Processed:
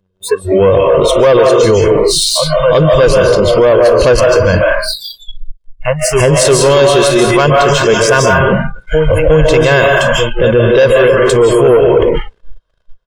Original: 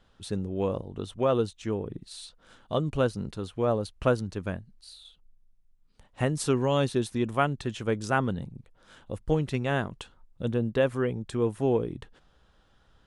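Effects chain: on a send: reverse echo 0.354 s -14 dB; on the sum: AGC gain up to 8.5 dB; bell 120 Hz -7 dB 0.42 oct; comb 1.9 ms, depth 82%; digital reverb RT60 0.72 s, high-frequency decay 0.75×, pre-delay 0.11 s, DRR 1 dB; sample leveller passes 2; spectral noise reduction 30 dB; dynamic EQ 5900 Hz, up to +6 dB, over -35 dBFS, Q 1; compressor, threshold -12 dBFS, peak gain reduction 8 dB; maximiser +15.5 dB; gain -1 dB

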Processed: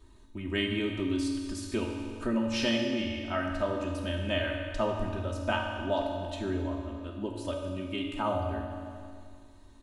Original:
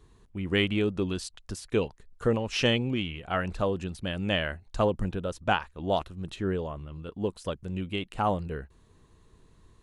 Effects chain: comb 3.2 ms, depth 89%; reverb RT60 1.8 s, pre-delay 3 ms, DRR 1 dB; in parallel at +1.5 dB: compressor, threshold -35 dBFS, peak gain reduction 17 dB; on the sum: gain -9 dB

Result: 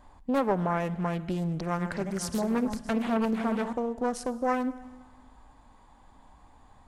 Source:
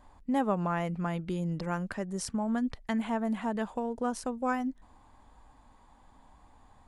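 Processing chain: 1.53–3.73 regenerating reverse delay 0.257 s, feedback 48%, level -7.5 dB; reverb RT60 1.6 s, pre-delay 49 ms, DRR 16.5 dB; Doppler distortion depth 0.53 ms; gain +2.5 dB

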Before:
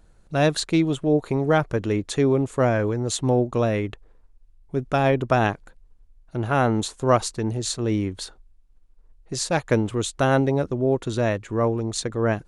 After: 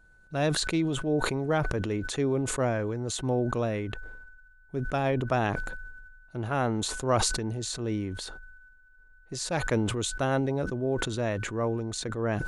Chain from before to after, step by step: whine 1500 Hz -52 dBFS; sustainer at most 35 dB/s; gain -7.5 dB

